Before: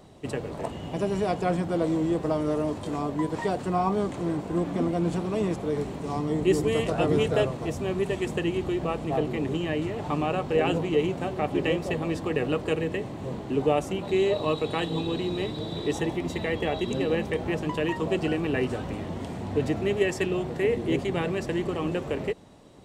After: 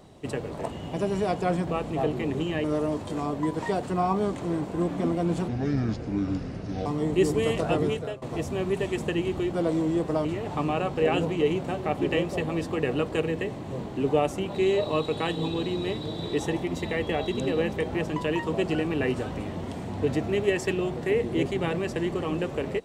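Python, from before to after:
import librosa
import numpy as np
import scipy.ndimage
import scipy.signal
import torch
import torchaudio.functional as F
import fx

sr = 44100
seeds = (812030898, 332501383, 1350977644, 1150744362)

y = fx.edit(x, sr, fx.swap(start_s=1.67, length_s=0.73, other_s=8.81, other_length_s=0.97),
    fx.speed_span(start_s=5.24, length_s=0.91, speed=0.66),
    fx.fade_out_to(start_s=7.0, length_s=0.51, floor_db=-22.0), tone=tone)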